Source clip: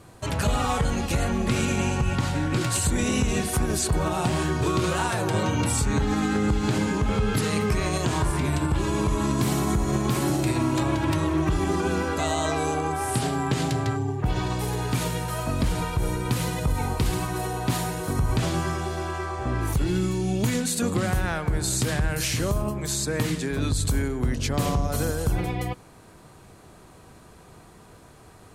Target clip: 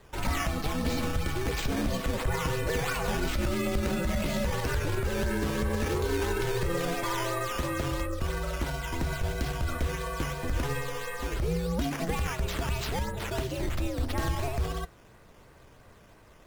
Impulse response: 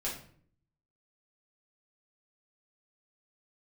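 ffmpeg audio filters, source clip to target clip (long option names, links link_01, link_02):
-filter_complex "[0:a]afreqshift=-87,asplit=2[link_01][link_02];[link_02]adynamicsmooth=sensitivity=6.5:basefreq=1700,volume=-3dB[link_03];[link_01][link_03]amix=inputs=2:normalize=0,acrusher=samples=13:mix=1:aa=0.000001:lfo=1:lforange=13:lforate=1.7,flanger=delay=3.4:depth=7.4:regen=-75:speed=0.48:shape=sinusoidal,asetrate=76440,aresample=44100,volume=-5dB"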